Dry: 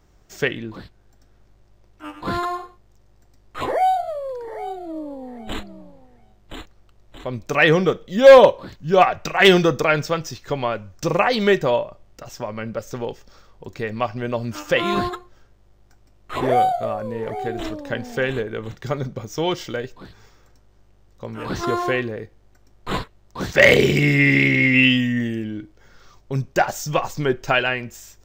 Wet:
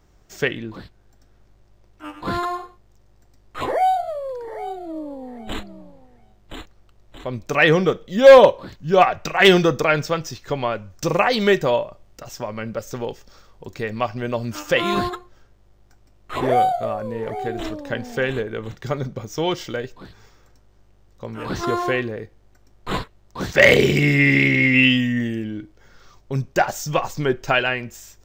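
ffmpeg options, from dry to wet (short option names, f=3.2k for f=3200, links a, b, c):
-filter_complex "[0:a]asettb=1/sr,asplit=3[a][b][c];[a]atrim=end=10.904[d];[b]atrim=start=10.9:end=15.1,asetpts=PTS-STARTPTS,afade=t=in:d=0.004:c=qsin,afade=t=out:st=4.196:d=0.004:c=qsin,highshelf=f=5.1k:g=4[e];[c]atrim=start=15.096[f];[d][e]acrossfade=d=0.004:c1=hsin:c2=qsin[g];[g][f]acrossfade=d=0.004:c1=qsin:c2=hsin"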